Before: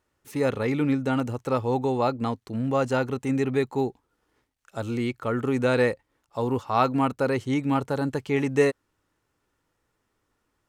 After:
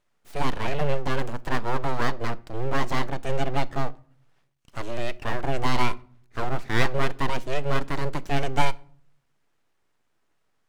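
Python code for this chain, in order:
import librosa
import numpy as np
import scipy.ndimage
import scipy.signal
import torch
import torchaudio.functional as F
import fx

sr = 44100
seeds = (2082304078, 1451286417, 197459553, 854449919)

y = fx.high_shelf(x, sr, hz=8300.0, db=-6.5)
y = np.abs(y)
y = fx.room_shoebox(y, sr, seeds[0], volume_m3=660.0, walls='furnished', distance_m=0.31)
y = y * librosa.db_to_amplitude(1.5)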